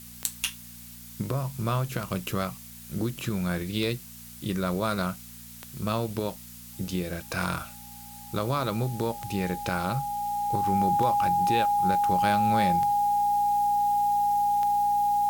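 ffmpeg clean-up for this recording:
ffmpeg -i in.wav -af "adeclick=threshold=4,bandreject=frequency=59.3:width_type=h:width=4,bandreject=frequency=118.6:width_type=h:width=4,bandreject=frequency=177.9:width_type=h:width=4,bandreject=frequency=237.2:width_type=h:width=4,bandreject=frequency=820:width=30,afftdn=noise_reduction=28:noise_floor=-45" out.wav

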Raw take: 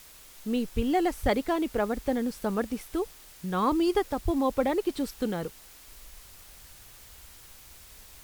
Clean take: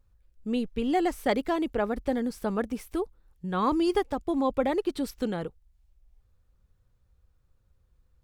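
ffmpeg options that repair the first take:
ffmpeg -i in.wav -filter_complex "[0:a]asplit=3[link_01][link_02][link_03];[link_01]afade=type=out:start_time=0.75:duration=0.02[link_04];[link_02]highpass=frequency=140:width=0.5412,highpass=frequency=140:width=1.3066,afade=type=in:start_time=0.75:duration=0.02,afade=type=out:start_time=0.87:duration=0.02[link_05];[link_03]afade=type=in:start_time=0.87:duration=0.02[link_06];[link_04][link_05][link_06]amix=inputs=3:normalize=0,asplit=3[link_07][link_08][link_09];[link_07]afade=type=out:start_time=1.22:duration=0.02[link_10];[link_08]highpass=frequency=140:width=0.5412,highpass=frequency=140:width=1.3066,afade=type=in:start_time=1.22:duration=0.02,afade=type=out:start_time=1.34:duration=0.02[link_11];[link_09]afade=type=in:start_time=1.34:duration=0.02[link_12];[link_10][link_11][link_12]amix=inputs=3:normalize=0,asplit=3[link_13][link_14][link_15];[link_13]afade=type=out:start_time=4.24:duration=0.02[link_16];[link_14]highpass=frequency=140:width=0.5412,highpass=frequency=140:width=1.3066,afade=type=in:start_time=4.24:duration=0.02,afade=type=out:start_time=4.36:duration=0.02[link_17];[link_15]afade=type=in:start_time=4.36:duration=0.02[link_18];[link_16][link_17][link_18]amix=inputs=3:normalize=0,afwtdn=0.0028,asetnsamples=nb_out_samples=441:pad=0,asendcmd='5.87 volume volume -8.5dB',volume=0dB" out.wav

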